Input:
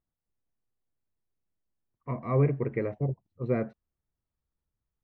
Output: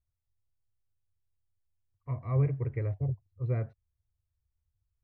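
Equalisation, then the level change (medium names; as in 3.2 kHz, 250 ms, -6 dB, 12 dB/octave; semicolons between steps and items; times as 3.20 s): resonant low shelf 140 Hz +12 dB, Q 3; -8.0 dB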